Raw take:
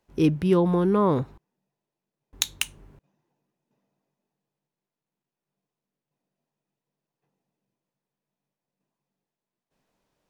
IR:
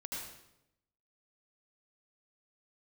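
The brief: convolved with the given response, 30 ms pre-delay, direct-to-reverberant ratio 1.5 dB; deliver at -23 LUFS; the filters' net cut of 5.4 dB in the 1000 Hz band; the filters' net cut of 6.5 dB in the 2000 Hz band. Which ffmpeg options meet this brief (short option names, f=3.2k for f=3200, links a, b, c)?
-filter_complex "[0:a]equalizer=f=1k:t=o:g=-4,equalizer=f=2k:t=o:g=-9,asplit=2[a][b];[1:a]atrim=start_sample=2205,adelay=30[c];[b][c]afir=irnorm=-1:irlink=0,volume=-1.5dB[d];[a][d]amix=inputs=2:normalize=0,volume=-0.5dB"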